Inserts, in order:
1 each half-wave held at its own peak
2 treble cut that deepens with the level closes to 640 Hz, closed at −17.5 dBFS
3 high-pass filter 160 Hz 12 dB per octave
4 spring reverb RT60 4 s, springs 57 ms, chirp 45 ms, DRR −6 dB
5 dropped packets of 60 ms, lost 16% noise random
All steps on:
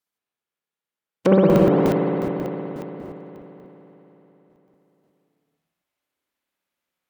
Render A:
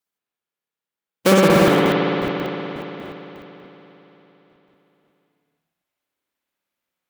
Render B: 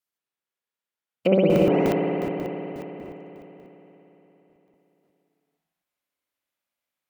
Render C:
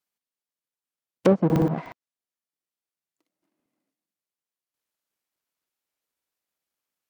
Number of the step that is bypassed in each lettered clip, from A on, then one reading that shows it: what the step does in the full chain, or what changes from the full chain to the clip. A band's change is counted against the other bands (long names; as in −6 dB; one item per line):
2, 4 kHz band +14.5 dB
1, distortion level −5 dB
4, change in momentary loudness spread −12 LU